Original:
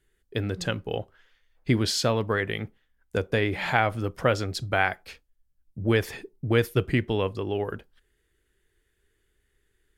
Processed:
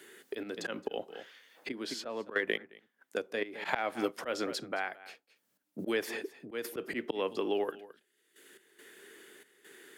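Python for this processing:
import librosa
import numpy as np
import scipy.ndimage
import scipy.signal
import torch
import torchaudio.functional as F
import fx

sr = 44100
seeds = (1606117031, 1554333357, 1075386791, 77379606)

y = fx.step_gate(x, sr, bpm=70, pattern='xx.xxxxx...x.x', floor_db=-12.0, edge_ms=4.5)
y = y + 10.0 ** (-21.5 / 20.0) * np.pad(y, (int(216 * sr / 1000.0), 0))[:len(y)]
y = fx.transient(y, sr, attack_db=9, sustain_db=-3, at=(1.74, 4.08), fade=0.02)
y = scipy.signal.sosfilt(scipy.signal.butter(4, 240.0, 'highpass', fs=sr, output='sos'), y)
y = fx.auto_swell(y, sr, attack_ms=208.0)
y = fx.band_squash(y, sr, depth_pct=70)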